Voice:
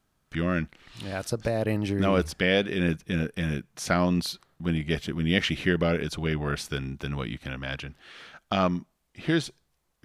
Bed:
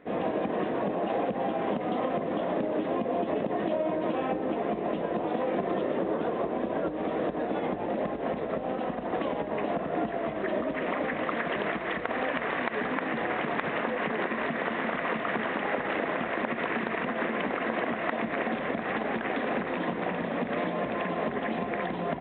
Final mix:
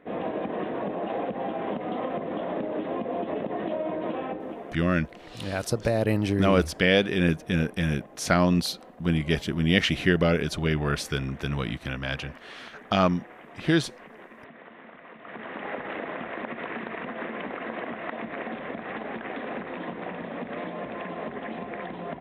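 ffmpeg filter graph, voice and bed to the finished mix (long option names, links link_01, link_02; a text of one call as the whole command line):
ffmpeg -i stem1.wav -i stem2.wav -filter_complex "[0:a]adelay=4400,volume=2.5dB[link_01];[1:a]volume=11.5dB,afade=type=out:start_time=4.11:duration=0.73:silence=0.158489,afade=type=in:start_time=15.17:duration=0.51:silence=0.223872[link_02];[link_01][link_02]amix=inputs=2:normalize=0" out.wav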